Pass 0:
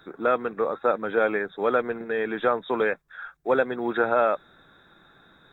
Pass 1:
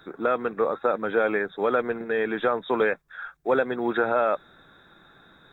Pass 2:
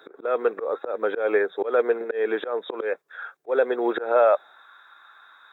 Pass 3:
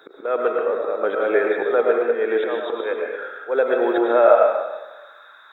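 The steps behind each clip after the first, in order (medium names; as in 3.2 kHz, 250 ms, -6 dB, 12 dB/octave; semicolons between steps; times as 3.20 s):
peak limiter -13.5 dBFS, peak gain reduction 4 dB; trim +1.5 dB
high-pass sweep 440 Hz -> 1.1 kHz, 4.14–4.67 s; slow attack 186 ms
reverberation RT60 1.1 s, pre-delay 70 ms, DRR 0 dB; trim +1.5 dB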